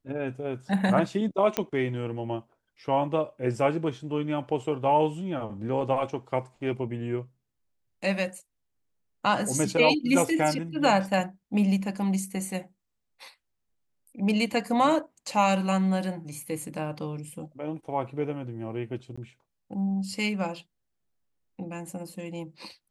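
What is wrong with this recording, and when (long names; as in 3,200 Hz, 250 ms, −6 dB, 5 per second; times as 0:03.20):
0:01.57: click −9 dBFS
0:19.16–0:19.18: drop-out 15 ms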